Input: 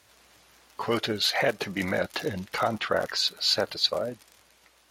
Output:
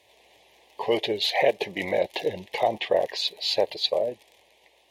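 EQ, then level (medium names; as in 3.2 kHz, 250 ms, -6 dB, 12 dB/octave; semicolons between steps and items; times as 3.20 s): Butterworth band-stop 1.4 kHz, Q 1.5; high-order bell 580 Hz +11.5 dB; high-order bell 2.3 kHz +9.5 dB; -6.5 dB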